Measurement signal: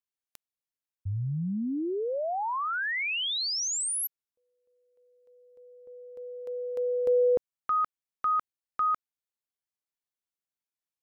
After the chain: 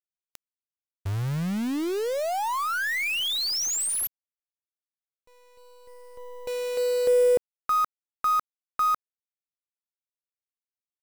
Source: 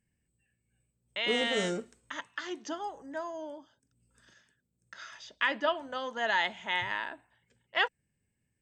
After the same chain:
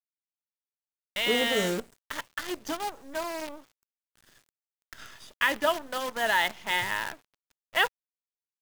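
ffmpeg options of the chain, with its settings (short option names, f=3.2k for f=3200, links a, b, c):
-af "acrusher=bits=7:dc=4:mix=0:aa=0.000001,volume=3.5dB"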